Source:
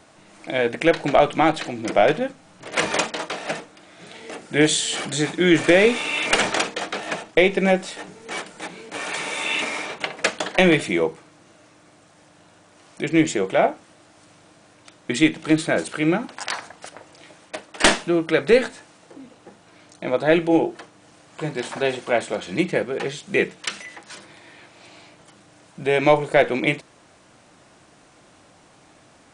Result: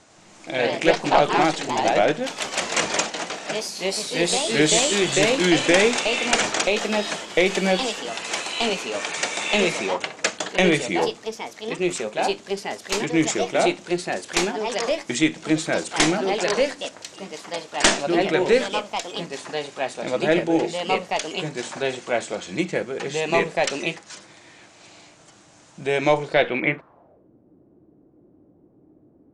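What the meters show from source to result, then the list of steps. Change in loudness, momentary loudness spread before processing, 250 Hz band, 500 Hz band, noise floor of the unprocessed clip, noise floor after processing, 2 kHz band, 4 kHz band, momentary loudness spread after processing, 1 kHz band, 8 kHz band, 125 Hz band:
-1.0 dB, 15 LU, -1.5 dB, -0.5 dB, -53 dBFS, -55 dBFS, -0.5 dB, +3.0 dB, 11 LU, +1.5 dB, +5.0 dB, -2.0 dB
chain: echoes that change speed 0.102 s, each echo +2 st, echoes 3; low-pass sweep 7000 Hz -> 350 Hz, 26.18–27.3; gain -3 dB

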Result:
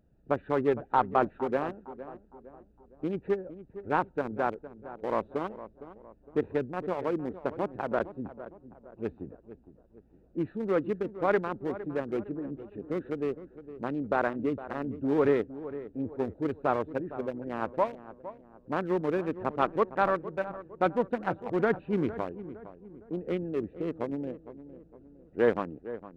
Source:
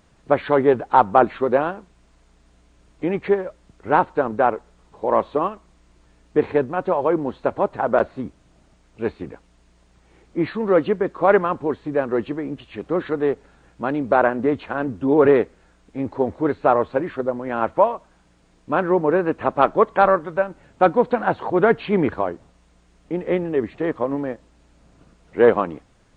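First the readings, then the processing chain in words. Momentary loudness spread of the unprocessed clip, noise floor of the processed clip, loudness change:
13 LU, -60 dBFS, -10.5 dB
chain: Wiener smoothing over 41 samples; dynamic EQ 660 Hz, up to -4 dB, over -26 dBFS, Q 1; darkening echo 0.46 s, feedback 45%, low-pass 1300 Hz, level -13.5 dB; gain -7.5 dB

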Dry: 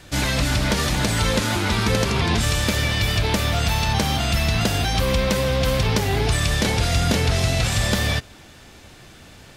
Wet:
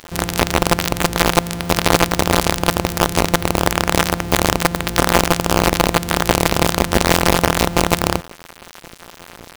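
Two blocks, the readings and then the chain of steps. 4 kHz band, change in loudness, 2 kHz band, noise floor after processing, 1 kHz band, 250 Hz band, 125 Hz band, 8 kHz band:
+2.0 dB, +4.0 dB, +4.0 dB, -42 dBFS, +9.0 dB, +5.0 dB, -1.5 dB, +5.0 dB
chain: sample sorter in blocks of 256 samples; dynamic EQ 610 Hz, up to +5 dB, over -38 dBFS, Q 3.1; companded quantiser 2-bit; gain -1 dB

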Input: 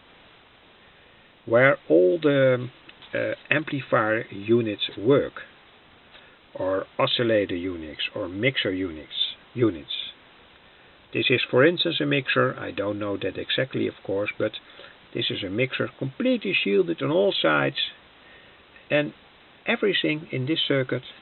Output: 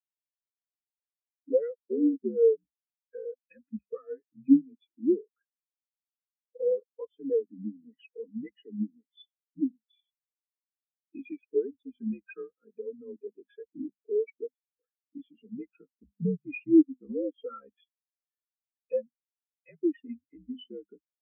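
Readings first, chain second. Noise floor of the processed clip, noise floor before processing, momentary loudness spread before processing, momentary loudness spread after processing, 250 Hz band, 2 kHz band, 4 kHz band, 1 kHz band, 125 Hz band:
under -85 dBFS, -54 dBFS, 11 LU, 22 LU, -3.5 dB, -27.5 dB, under -30 dB, under -25 dB, -15.0 dB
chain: compressor 4:1, threshold -35 dBFS, peak gain reduction 19 dB; sample leveller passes 2; mistuned SSB -70 Hz 160–3200 Hz; notches 50/100/150/200/250 Hz; spectral expander 4:1; gain +2.5 dB

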